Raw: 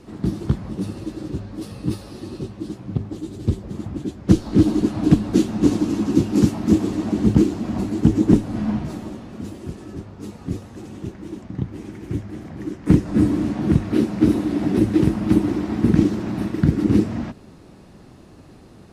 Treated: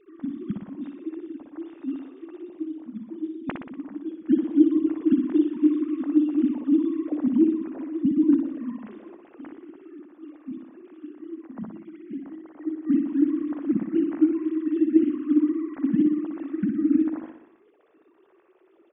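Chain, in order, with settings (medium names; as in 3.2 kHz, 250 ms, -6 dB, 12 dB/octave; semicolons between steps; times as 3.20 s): formants replaced by sine waves; on a send: feedback delay 60 ms, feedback 59%, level -6.5 dB; on the sum: trim -5.5 dB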